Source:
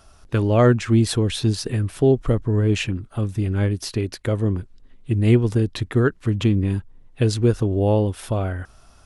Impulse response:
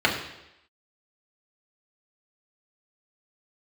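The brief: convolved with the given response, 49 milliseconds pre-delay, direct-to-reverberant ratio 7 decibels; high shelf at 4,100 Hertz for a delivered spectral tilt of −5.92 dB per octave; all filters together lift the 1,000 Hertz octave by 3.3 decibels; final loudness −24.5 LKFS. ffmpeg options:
-filter_complex "[0:a]equalizer=frequency=1000:width_type=o:gain=4,highshelf=frequency=4100:gain=8.5,asplit=2[link_01][link_02];[1:a]atrim=start_sample=2205,adelay=49[link_03];[link_02][link_03]afir=irnorm=-1:irlink=0,volume=-24.5dB[link_04];[link_01][link_04]amix=inputs=2:normalize=0,volume=-4.5dB"

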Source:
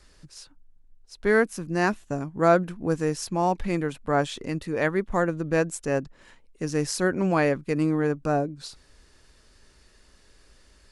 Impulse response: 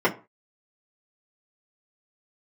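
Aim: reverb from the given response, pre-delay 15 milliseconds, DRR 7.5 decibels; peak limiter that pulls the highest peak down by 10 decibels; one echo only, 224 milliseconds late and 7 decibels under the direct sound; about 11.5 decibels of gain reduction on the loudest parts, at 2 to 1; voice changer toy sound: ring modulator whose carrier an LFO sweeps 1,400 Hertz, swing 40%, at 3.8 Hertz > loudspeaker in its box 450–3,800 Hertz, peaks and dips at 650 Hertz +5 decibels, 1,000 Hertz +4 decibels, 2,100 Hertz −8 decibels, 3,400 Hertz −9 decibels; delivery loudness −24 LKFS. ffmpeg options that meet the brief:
-filter_complex "[0:a]acompressor=threshold=-35dB:ratio=2,alimiter=level_in=4dB:limit=-24dB:level=0:latency=1,volume=-4dB,aecho=1:1:224:0.447,asplit=2[link_01][link_02];[1:a]atrim=start_sample=2205,adelay=15[link_03];[link_02][link_03]afir=irnorm=-1:irlink=0,volume=-24.5dB[link_04];[link_01][link_04]amix=inputs=2:normalize=0,aeval=exprs='val(0)*sin(2*PI*1400*n/s+1400*0.4/3.8*sin(2*PI*3.8*n/s))':channel_layout=same,highpass=450,equalizer=frequency=650:width_type=q:width=4:gain=5,equalizer=frequency=1000:width_type=q:width=4:gain=4,equalizer=frequency=2100:width_type=q:width=4:gain=-8,equalizer=frequency=3400:width_type=q:width=4:gain=-9,lowpass=frequency=3800:width=0.5412,lowpass=frequency=3800:width=1.3066,volume=15.5dB"

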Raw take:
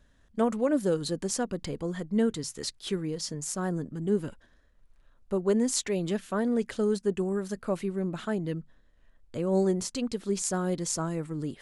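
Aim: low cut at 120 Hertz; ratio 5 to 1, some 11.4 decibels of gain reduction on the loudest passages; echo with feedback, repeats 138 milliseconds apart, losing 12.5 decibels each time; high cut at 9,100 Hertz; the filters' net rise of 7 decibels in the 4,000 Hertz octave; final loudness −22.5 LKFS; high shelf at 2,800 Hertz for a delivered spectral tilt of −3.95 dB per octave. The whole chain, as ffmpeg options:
ffmpeg -i in.wav -af "highpass=120,lowpass=9100,highshelf=frequency=2800:gain=5,equalizer=frequency=4000:width_type=o:gain=4.5,acompressor=threshold=-34dB:ratio=5,aecho=1:1:138|276|414:0.237|0.0569|0.0137,volume=14.5dB" out.wav

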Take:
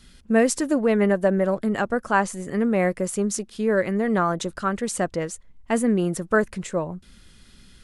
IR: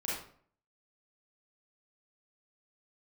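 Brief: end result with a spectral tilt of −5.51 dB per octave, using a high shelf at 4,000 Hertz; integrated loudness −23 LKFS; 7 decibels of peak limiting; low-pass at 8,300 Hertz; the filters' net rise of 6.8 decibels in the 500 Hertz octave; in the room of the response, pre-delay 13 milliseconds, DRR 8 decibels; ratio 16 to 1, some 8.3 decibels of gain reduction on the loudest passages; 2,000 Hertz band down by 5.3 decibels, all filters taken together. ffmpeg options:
-filter_complex "[0:a]lowpass=8300,equalizer=frequency=500:width_type=o:gain=8.5,equalizer=frequency=2000:width_type=o:gain=-7,highshelf=frequency=4000:gain=-4,acompressor=threshold=-17dB:ratio=16,alimiter=limit=-15.5dB:level=0:latency=1,asplit=2[link_01][link_02];[1:a]atrim=start_sample=2205,adelay=13[link_03];[link_02][link_03]afir=irnorm=-1:irlink=0,volume=-12dB[link_04];[link_01][link_04]amix=inputs=2:normalize=0,volume=1.5dB"

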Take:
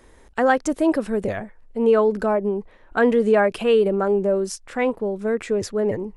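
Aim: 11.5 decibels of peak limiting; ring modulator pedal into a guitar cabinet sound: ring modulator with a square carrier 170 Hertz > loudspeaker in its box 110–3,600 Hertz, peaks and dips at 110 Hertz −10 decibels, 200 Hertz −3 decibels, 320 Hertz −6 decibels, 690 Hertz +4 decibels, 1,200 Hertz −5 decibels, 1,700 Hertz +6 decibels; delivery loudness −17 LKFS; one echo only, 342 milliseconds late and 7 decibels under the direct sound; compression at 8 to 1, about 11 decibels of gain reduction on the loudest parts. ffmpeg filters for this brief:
ffmpeg -i in.wav -af "acompressor=threshold=-24dB:ratio=8,alimiter=limit=-23.5dB:level=0:latency=1,aecho=1:1:342:0.447,aeval=exprs='val(0)*sgn(sin(2*PI*170*n/s))':channel_layout=same,highpass=110,equalizer=frequency=110:width_type=q:width=4:gain=-10,equalizer=frequency=200:width_type=q:width=4:gain=-3,equalizer=frequency=320:width_type=q:width=4:gain=-6,equalizer=frequency=690:width_type=q:width=4:gain=4,equalizer=frequency=1200:width_type=q:width=4:gain=-5,equalizer=frequency=1700:width_type=q:width=4:gain=6,lowpass=frequency=3600:width=0.5412,lowpass=frequency=3600:width=1.3066,volume=15dB" out.wav

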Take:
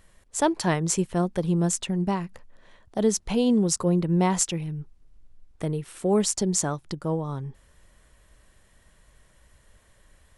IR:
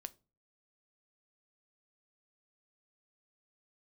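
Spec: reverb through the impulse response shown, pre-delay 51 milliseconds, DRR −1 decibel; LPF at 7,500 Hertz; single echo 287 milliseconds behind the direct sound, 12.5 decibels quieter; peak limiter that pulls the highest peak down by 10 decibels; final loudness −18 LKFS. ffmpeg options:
-filter_complex "[0:a]lowpass=7500,alimiter=limit=-18.5dB:level=0:latency=1,aecho=1:1:287:0.237,asplit=2[link_01][link_02];[1:a]atrim=start_sample=2205,adelay=51[link_03];[link_02][link_03]afir=irnorm=-1:irlink=0,volume=5.5dB[link_04];[link_01][link_04]amix=inputs=2:normalize=0,volume=7dB"

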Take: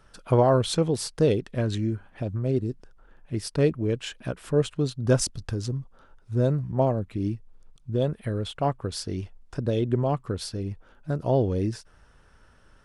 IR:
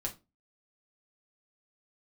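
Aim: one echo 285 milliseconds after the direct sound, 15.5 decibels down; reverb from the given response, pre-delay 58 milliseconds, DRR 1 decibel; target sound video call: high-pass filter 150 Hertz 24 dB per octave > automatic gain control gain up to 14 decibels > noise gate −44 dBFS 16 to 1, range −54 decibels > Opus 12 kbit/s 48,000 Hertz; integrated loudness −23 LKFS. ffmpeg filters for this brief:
-filter_complex "[0:a]aecho=1:1:285:0.168,asplit=2[link_01][link_02];[1:a]atrim=start_sample=2205,adelay=58[link_03];[link_02][link_03]afir=irnorm=-1:irlink=0,volume=-2dB[link_04];[link_01][link_04]amix=inputs=2:normalize=0,highpass=frequency=150:width=0.5412,highpass=frequency=150:width=1.3066,dynaudnorm=maxgain=14dB,agate=range=-54dB:threshold=-44dB:ratio=16,volume=2.5dB" -ar 48000 -c:a libopus -b:a 12k

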